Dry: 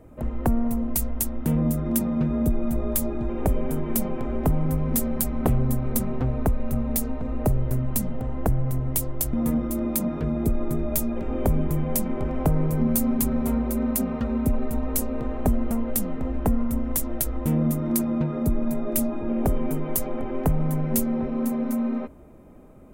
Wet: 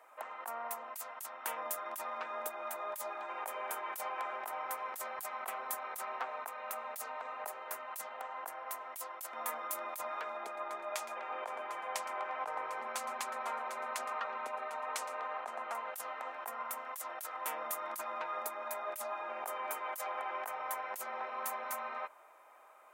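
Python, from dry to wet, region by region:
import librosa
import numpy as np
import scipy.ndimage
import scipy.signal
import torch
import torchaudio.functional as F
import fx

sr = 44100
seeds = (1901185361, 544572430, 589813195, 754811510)

y = fx.chain(x, sr, fx.air_absorb(metres=97.0),
    fx.echo_single(ms=116, db=-15.5), at=(10.37, 15.75))
y = scipy.signal.sosfilt(scipy.signal.butter(4, 920.0, 'highpass', fs=sr, output='sos'), y)
y = fx.high_shelf(y, sr, hz=2500.0, db=-8.5)
y = fx.over_compress(y, sr, threshold_db=-42.0, ratio=-1.0)
y = F.gain(torch.from_numpy(y), 4.5).numpy()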